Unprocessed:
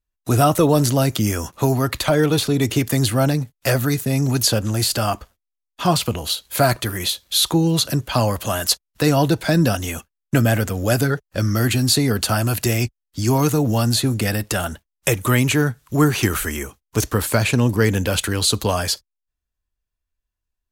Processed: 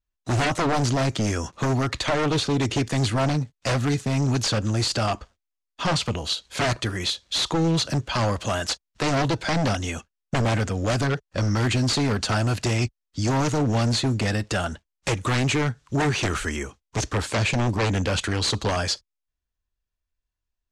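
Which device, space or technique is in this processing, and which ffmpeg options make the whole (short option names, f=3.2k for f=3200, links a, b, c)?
synthesiser wavefolder: -af "aeval=exprs='0.188*(abs(mod(val(0)/0.188+3,4)-2)-1)':c=same,lowpass=f=7.4k:w=0.5412,lowpass=f=7.4k:w=1.3066,volume=-2dB"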